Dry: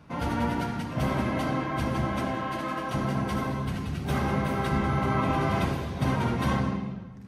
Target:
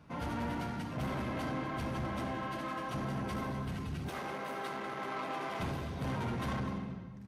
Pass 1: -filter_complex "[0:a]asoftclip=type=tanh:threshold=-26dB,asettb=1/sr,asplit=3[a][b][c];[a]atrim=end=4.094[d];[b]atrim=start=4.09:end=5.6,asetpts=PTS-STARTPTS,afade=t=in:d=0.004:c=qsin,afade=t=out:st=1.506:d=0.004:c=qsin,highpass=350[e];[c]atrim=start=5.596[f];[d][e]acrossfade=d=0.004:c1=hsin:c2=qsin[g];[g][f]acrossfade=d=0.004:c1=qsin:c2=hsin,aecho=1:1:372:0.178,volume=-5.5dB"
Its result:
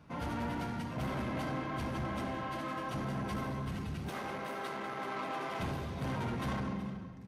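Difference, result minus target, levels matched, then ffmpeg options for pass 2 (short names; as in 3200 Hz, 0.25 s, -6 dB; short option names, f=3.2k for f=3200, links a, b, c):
echo 0.121 s late
-filter_complex "[0:a]asoftclip=type=tanh:threshold=-26dB,asettb=1/sr,asplit=3[a][b][c];[a]atrim=end=4.094[d];[b]atrim=start=4.09:end=5.6,asetpts=PTS-STARTPTS,afade=t=in:d=0.004:c=qsin,afade=t=out:st=1.506:d=0.004:c=qsin,highpass=350[e];[c]atrim=start=5.596[f];[d][e]acrossfade=d=0.004:c1=hsin:c2=qsin[g];[g][f]acrossfade=d=0.004:c1=qsin:c2=hsin,aecho=1:1:251:0.178,volume=-5.5dB"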